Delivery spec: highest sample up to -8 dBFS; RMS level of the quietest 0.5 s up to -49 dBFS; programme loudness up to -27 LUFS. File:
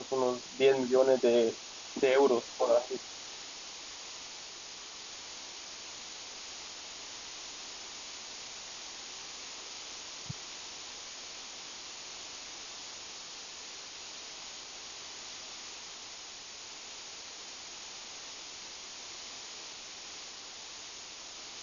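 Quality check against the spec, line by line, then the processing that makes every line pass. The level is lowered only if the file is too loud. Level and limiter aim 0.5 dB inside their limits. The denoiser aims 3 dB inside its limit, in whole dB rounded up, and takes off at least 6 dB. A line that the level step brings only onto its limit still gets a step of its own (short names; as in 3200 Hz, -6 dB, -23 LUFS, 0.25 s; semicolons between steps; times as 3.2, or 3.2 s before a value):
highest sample -13.5 dBFS: OK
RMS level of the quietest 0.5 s -47 dBFS: fail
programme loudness -36.0 LUFS: OK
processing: denoiser 6 dB, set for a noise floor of -47 dBFS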